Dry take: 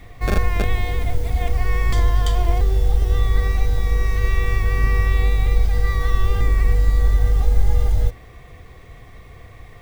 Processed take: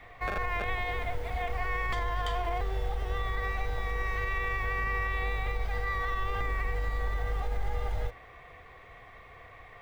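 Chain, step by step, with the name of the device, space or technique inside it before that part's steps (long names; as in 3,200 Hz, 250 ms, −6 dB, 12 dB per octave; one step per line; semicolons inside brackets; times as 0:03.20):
DJ mixer with the lows and highs turned down (three-way crossover with the lows and the highs turned down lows −15 dB, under 540 Hz, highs −16 dB, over 3,000 Hz; brickwall limiter −22 dBFS, peak gain reduction 8 dB)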